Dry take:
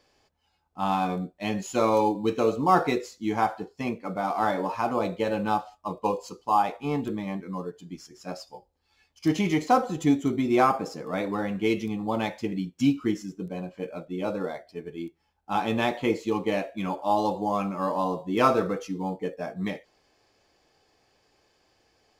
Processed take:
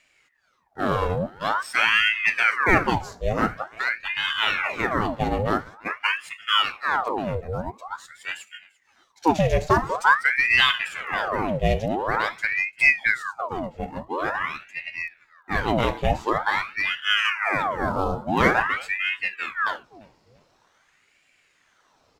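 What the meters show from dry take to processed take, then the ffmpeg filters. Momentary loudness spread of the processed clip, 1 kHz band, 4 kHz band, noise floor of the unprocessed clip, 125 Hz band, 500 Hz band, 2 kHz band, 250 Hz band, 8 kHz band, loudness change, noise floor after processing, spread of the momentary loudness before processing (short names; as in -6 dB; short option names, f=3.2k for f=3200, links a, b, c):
13 LU, +2.0 dB, +14.0 dB, -71 dBFS, +3.5 dB, 0.0 dB, +15.5 dB, -4.0 dB, +1.0 dB, +4.0 dB, -65 dBFS, 14 LU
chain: -af "lowshelf=f=170:g=11.5,aecho=1:1:345|690:0.0668|0.0227,aeval=exprs='val(0)*sin(2*PI*1300*n/s+1300*0.8/0.47*sin(2*PI*0.47*n/s))':c=same,volume=3.5dB"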